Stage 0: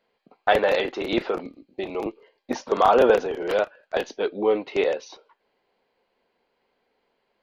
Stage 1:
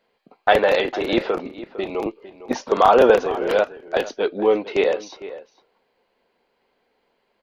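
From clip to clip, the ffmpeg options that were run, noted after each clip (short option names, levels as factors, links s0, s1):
-filter_complex "[0:a]asplit=2[s0][s1];[s1]adelay=454.8,volume=0.178,highshelf=f=4000:g=-10.2[s2];[s0][s2]amix=inputs=2:normalize=0,volume=1.5"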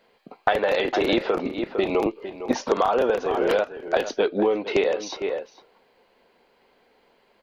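-af "acompressor=threshold=0.0562:ratio=10,volume=2.24"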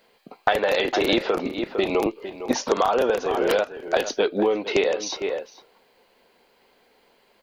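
-af "highshelf=f=4700:g=10.5"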